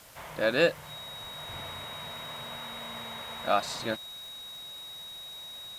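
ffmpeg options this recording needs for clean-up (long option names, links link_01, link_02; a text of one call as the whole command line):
ffmpeg -i in.wav -af "adeclick=threshold=4,bandreject=frequency=3800:width=30,afwtdn=0.0022" out.wav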